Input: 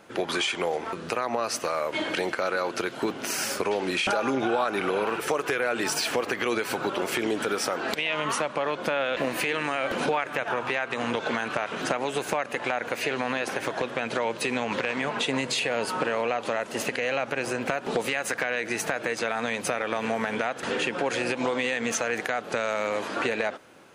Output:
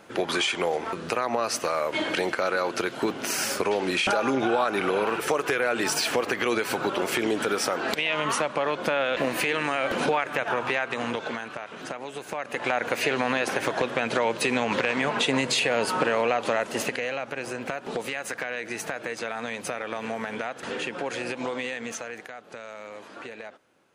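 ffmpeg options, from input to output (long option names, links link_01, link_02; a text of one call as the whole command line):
ffmpeg -i in.wav -af "volume=12.5dB,afade=type=out:start_time=10.78:duration=0.75:silence=0.334965,afade=type=in:start_time=12.29:duration=0.49:silence=0.281838,afade=type=out:start_time=16.64:duration=0.51:silence=0.446684,afade=type=out:start_time=21.58:duration=0.73:silence=0.354813" out.wav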